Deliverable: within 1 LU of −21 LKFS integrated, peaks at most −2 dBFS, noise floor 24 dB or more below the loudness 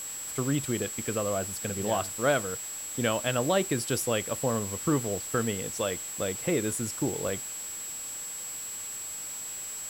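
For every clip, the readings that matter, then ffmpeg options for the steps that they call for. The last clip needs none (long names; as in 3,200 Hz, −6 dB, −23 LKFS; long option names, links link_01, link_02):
interfering tone 7,700 Hz; level of the tone −36 dBFS; background noise floor −38 dBFS; target noise floor −54 dBFS; integrated loudness −30.0 LKFS; sample peak −12.0 dBFS; target loudness −21.0 LKFS
→ -af "bandreject=frequency=7700:width=30"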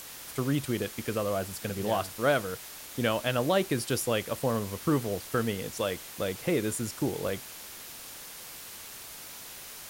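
interfering tone none found; background noise floor −45 dBFS; target noise floor −55 dBFS
→ -af "afftdn=noise_reduction=10:noise_floor=-45"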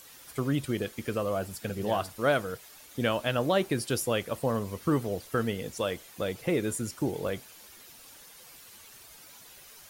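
background noise floor −52 dBFS; target noise floor −55 dBFS
→ -af "afftdn=noise_reduction=6:noise_floor=-52"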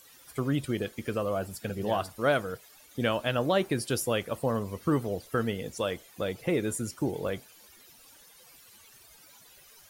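background noise floor −56 dBFS; integrated loudness −30.5 LKFS; sample peak −12.5 dBFS; target loudness −21.0 LKFS
→ -af "volume=9.5dB"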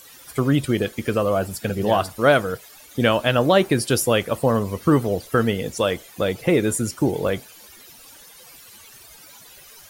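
integrated loudness −21.0 LKFS; sample peak −3.0 dBFS; background noise floor −46 dBFS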